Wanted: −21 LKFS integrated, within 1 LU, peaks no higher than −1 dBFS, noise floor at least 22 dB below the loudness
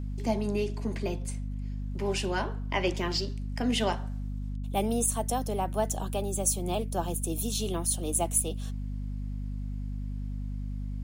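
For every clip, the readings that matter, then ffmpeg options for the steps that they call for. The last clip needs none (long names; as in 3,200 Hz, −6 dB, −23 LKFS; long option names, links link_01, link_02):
mains hum 50 Hz; hum harmonics up to 250 Hz; level of the hum −32 dBFS; integrated loudness −31.0 LKFS; sample peak −12.5 dBFS; target loudness −21.0 LKFS
→ -af "bandreject=frequency=50:width_type=h:width=6,bandreject=frequency=100:width_type=h:width=6,bandreject=frequency=150:width_type=h:width=6,bandreject=frequency=200:width_type=h:width=6,bandreject=frequency=250:width_type=h:width=6"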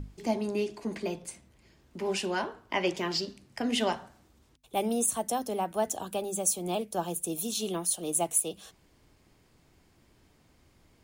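mains hum none found; integrated loudness −31.0 LKFS; sample peak −13.0 dBFS; target loudness −21.0 LKFS
→ -af "volume=10dB"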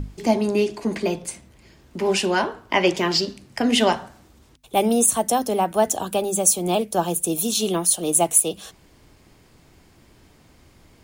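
integrated loudness −21.0 LKFS; sample peak −3.0 dBFS; background noise floor −54 dBFS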